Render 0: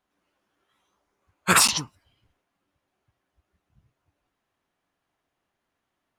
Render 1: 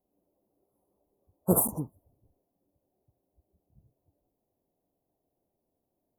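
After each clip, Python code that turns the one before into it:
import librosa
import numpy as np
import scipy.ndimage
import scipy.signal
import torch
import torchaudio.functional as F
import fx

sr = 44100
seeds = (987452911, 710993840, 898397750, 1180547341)

y = scipy.signal.sosfilt(scipy.signal.cheby2(4, 70, [1900.0, 4900.0], 'bandstop', fs=sr, output='sos'), x)
y = fx.low_shelf(y, sr, hz=350.0, db=-5.0)
y = y * 10.0 ** (5.5 / 20.0)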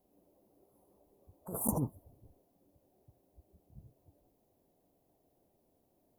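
y = fx.over_compress(x, sr, threshold_db=-35.0, ratio=-1.0)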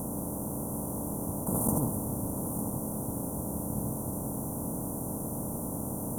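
y = fx.bin_compress(x, sr, power=0.2)
y = y + 10.0 ** (-10.0 / 20.0) * np.pad(y, (int(903 * sr / 1000.0), 0))[:len(y)]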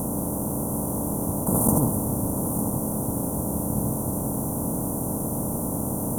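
y = fx.dmg_crackle(x, sr, seeds[0], per_s=260.0, level_db=-56.0)
y = y * 10.0 ** (7.5 / 20.0)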